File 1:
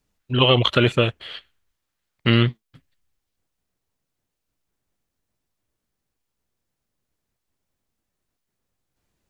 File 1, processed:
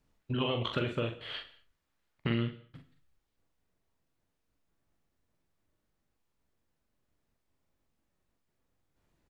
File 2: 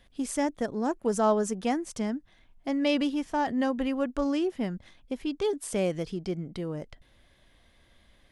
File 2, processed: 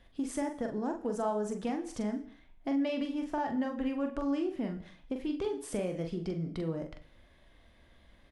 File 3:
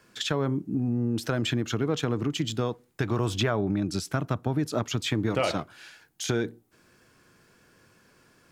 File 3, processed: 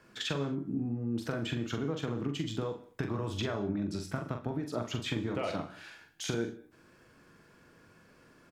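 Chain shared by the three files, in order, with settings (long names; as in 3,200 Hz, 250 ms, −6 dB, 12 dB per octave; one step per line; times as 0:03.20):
high-shelf EQ 3,400 Hz −9 dB
downward compressor 4 to 1, threshold −32 dBFS
double-tracking delay 43 ms −6 dB
reverb whose tail is shaped and stops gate 250 ms falling, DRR 10.5 dB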